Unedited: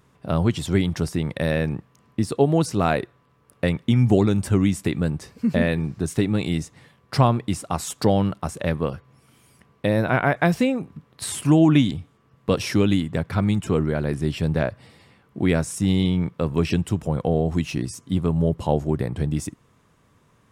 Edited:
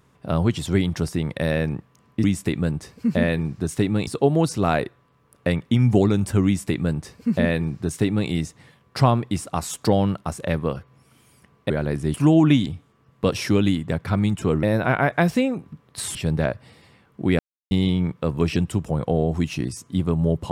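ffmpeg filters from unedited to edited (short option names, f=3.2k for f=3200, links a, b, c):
-filter_complex "[0:a]asplit=9[a][b][c][d][e][f][g][h][i];[a]atrim=end=2.242[j];[b]atrim=start=4.628:end=6.462[k];[c]atrim=start=2.238:end=9.872[l];[d]atrim=start=13.878:end=14.322[m];[e]atrim=start=11.388:end=13.882[n];[f]atrim=start=9.868:end=11.392[o];[g]atrim=start=14.318:end=15.56,asetpts=PTS-STARTPTS,afade=t=out:st=1.238:d=0.004:c=hsin[p];[h]atrim=start=15.56:end=15.88,asetpts=PTS-STARTPTS,volume=0[q];[i]atrim=start=15.88,asetpts=PTS-STARTPTS,afade=t=in:d=0.004:c=hsin[r];[j][k]acrossfade=d=0.004:c1=hsin:c2=hsin[s];[s][l]acrossfade=d=0.004:c1=hsin:c2=hsin[t];[t][m]acrossfade=d=0.004:c1=hsin:c2=hsin[u];[u][n]acrossfade=d=0.004:c1=hsin:c2=hsin[v];[v][o]acrossfade=d=0.004:c1=hsin:c2=hsin[w];[p][q][r]concat=n=3:v=0:a=1[x];[w][x]acrossfade=d=0.004:c1=hsin:c2=hsin"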